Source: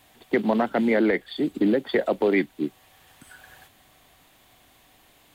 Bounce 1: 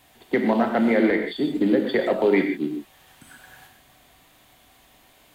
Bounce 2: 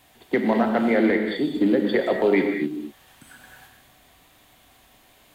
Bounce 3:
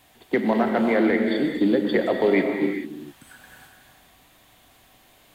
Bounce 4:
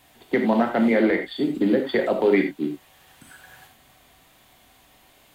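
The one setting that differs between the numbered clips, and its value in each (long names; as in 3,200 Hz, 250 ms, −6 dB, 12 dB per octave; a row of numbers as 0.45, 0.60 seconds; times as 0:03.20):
reverb whose tail is shaped and stops, gate: 170, 260, 460, 110 milliseconds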